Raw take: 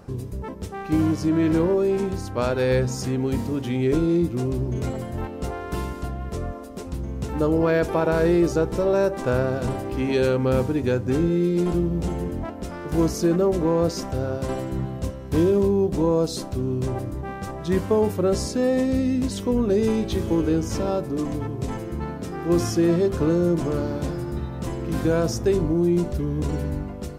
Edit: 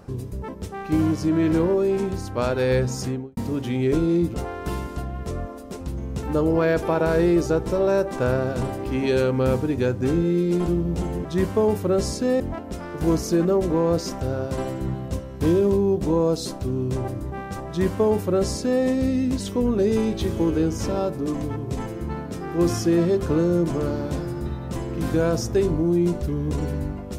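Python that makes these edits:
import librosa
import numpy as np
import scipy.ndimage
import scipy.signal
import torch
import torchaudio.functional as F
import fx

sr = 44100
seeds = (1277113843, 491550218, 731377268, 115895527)

y = fx.studio_fade_out(x, sr, start_s=3.02, length_s=0.35)
y = fx.edit(y, sr, fx.cut(start_s=4.34, length_s=1.06),
    fx.duplicate(start_s=17.59, length_s=1.15, to_s=12.31), tone=tone)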